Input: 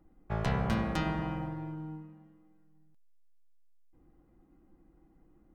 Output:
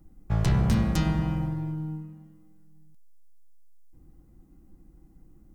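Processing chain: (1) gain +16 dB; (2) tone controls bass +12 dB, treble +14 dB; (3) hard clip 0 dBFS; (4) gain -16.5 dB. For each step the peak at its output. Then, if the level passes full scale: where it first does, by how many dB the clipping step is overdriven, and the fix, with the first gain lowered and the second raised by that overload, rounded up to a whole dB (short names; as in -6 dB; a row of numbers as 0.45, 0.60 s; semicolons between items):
-1.5, +7.5, 0.0, -16.5 dBFS; step 2, 7.5 dB; step 1 +8 dB, step 4 -8.5 dB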